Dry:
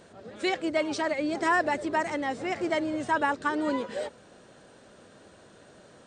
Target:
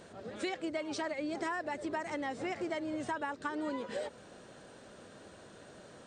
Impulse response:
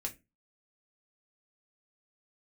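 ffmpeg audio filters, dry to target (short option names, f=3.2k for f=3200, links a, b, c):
-af "acompressor=threshold=-34dB:ratio=6"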